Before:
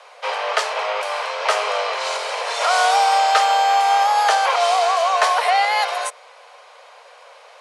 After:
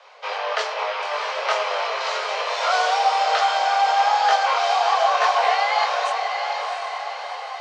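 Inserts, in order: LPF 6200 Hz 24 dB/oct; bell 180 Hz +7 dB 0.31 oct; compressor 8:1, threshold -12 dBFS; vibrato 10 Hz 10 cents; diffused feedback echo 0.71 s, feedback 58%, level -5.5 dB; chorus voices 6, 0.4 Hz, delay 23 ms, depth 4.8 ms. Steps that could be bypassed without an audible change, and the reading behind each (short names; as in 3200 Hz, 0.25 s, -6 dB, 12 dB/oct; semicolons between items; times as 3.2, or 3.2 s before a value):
bell 180 Hz: input band starts at 400 Hz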